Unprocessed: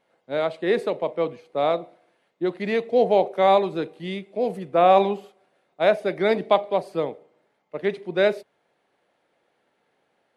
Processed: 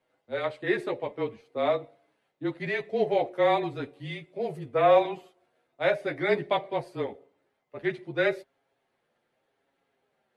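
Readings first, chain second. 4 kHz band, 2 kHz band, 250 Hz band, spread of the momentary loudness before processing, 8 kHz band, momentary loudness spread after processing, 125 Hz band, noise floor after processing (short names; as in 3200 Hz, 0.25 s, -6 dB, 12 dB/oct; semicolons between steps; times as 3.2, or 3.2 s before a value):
-5.0 dB, -1.0 dB, -5.0 dB, 12 LU, n/a, 12 LU, -2.5 dB, -77 dBFS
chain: dynamic EQ 1900 Hz, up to +7 dB, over -42 dBFS, Q 1.9; frequency shift -28 Hz; chorus voices 6, 0.2 Hz, delay 11 ms, depth 3.7 ms; gain -3 dB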